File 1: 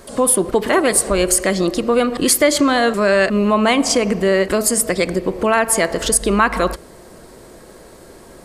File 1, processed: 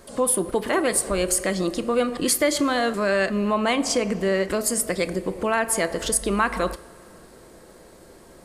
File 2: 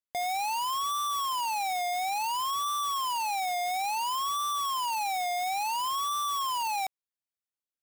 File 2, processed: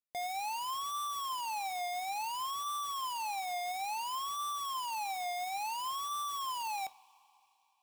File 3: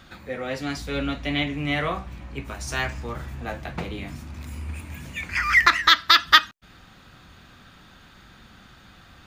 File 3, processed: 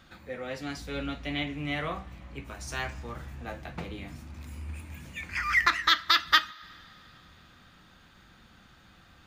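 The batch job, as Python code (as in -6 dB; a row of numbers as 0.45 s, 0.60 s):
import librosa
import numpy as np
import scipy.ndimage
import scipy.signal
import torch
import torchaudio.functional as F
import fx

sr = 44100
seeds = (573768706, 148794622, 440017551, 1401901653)

y = fx.rev_double_slope(x, sr, seeds[0], early_s=0.26, late_s=3.6, knee_db=-20, drr_db=14.0)
y = y * 10.0 ** (-7.0 / 20.0)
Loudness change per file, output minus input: -7.0 LU, -7.0 LU, -7.0 LU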